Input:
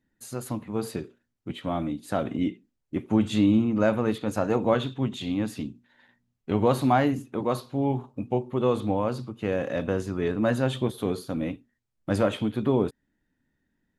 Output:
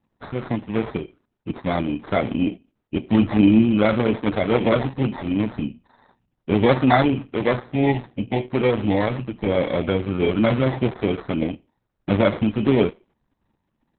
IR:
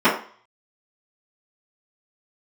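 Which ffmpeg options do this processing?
-filter_complex "[0:a]asplit=2[a][b];[1:a]atrim=start_sample=2205[c];[b][c]afir=irnorm=-1:irlink=0,volume=-43.5dB[d];[a][d]amix=inputs=2:normalize=0,acrusher=samples=16:mix=1:aa=0.000001,acontrast=87,highshelf=f=4.8k:g=-11" -ar 48000 -c:a libopus -b:a 6k

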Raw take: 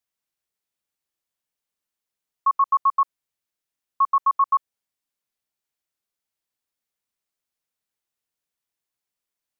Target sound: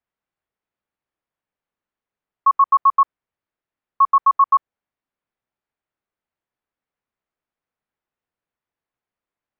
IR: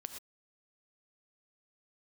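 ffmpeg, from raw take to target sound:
-af "lowpass=1.8k,volume=5.5dB"

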